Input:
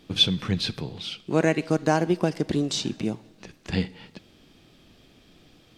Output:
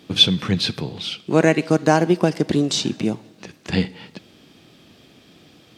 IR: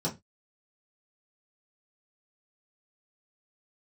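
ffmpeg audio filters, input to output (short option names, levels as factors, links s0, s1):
-af "highpass=100,volume=2"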